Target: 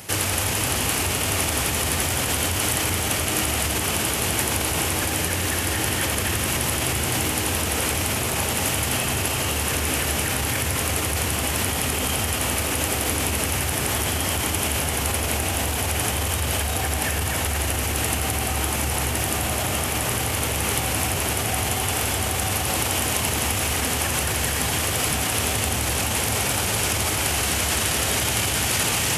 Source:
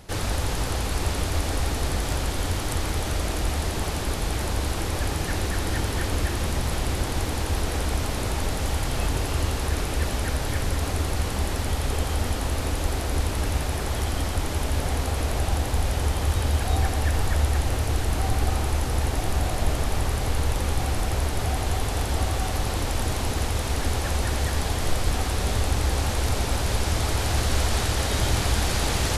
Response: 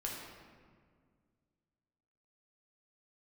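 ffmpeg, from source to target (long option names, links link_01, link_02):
-filter_complex "[0:a]highpass=frequency=83:width=0.5412,highpass=frequency=83:width=1.3066,asplit=2[link_01][link_02];[link_02]highshelf=frequency=3900:width_type=q:width=3:gain=-9.5[link_03];[1:a]atrim=start_sample=2205,asetrate=32193,aresample=44100[link_04];[link_03][link_04]afir=irnorm=-1:irlink=0,volume=-0.5dB[link_05];[link_01][link_05]amix=inputs=2:normalize=0,alimiter=limit=-18.5dB:level=0:latency=1:release=42,crystalizer=i=4:c=0"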